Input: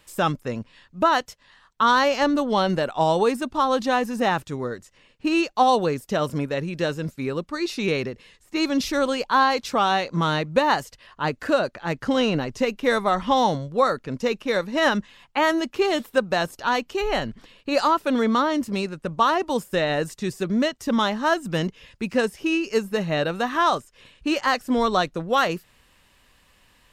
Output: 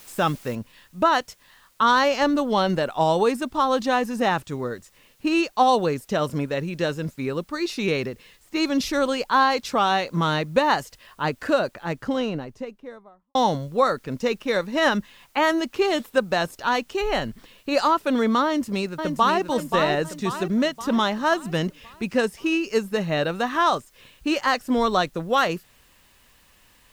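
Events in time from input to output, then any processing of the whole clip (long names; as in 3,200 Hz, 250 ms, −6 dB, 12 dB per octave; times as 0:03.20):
0:00.55: noise floor change −48 dB −62 dB
0:11.45–0:13.35: fade out and dull
0:18.45–0:19.42: delay throw 530 ms, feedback 50%, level −5.5 dB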